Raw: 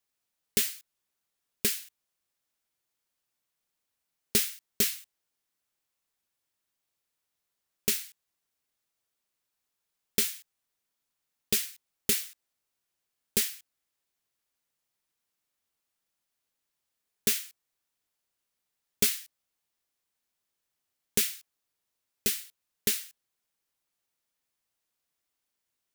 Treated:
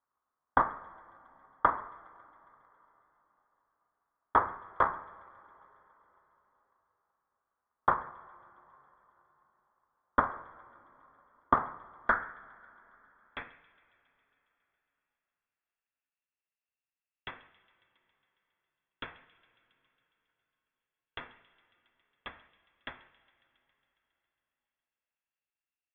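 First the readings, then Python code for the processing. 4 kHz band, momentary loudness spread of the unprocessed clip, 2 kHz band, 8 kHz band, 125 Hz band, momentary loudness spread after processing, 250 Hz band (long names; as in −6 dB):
−19.5 dB, 15 LU, +3.0 dB, below −40 dB, −3.5 dB, 19 LU, −4.0 dB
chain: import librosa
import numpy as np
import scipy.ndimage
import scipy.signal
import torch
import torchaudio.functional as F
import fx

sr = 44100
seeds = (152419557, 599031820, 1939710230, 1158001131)

p1 = fx.high_shelf_res(x, sr, hz=1500.0, db=7.5, q=1.5)
p2 = fx.level_steps(p1, sr, step_db=22)
p3 = p1 + (p2 * librosa.db_to_amplitude(-2.0))
p4 = fx.filter_sweep_bandpass(p3, sr, from_hz=2600.0, to_hz=1000.0, start_s=11.86, end_s=13.69, q=7.5)
p5 = fx.freq_invert(p4, sr, carrier_hz=3700)
p6 = p5 + fx.echo_wet_highpass(p5, sr, ms=137, feedback_pct=74, hz=2700.0, wet_db=-13.5, dry=0)
p7 = fx.rev_double_slope(p6, sr, seeds[0], early_s=0.55, late_s=4.1, knee_db=-16, drr_db=8.0)
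y = fx.transient(p7, sr, attack_db=7, sustain_db=2)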